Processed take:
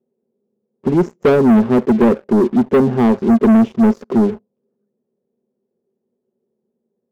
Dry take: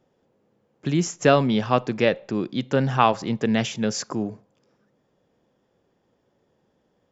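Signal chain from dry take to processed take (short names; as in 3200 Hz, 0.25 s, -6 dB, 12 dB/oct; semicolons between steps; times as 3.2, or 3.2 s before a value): dynamic EQ 300 Hz, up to +6 dB, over -35 dBFS, Q 1.8; double band-pass 300 Hz, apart 0.73 oct; sample leveller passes 3; gain +8 dB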